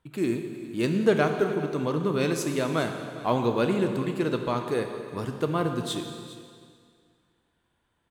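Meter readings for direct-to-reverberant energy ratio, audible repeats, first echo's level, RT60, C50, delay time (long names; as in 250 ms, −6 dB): 4.5 dB, 1, −17.5 dB, 2.1 s, 6.0 dB, 407 ms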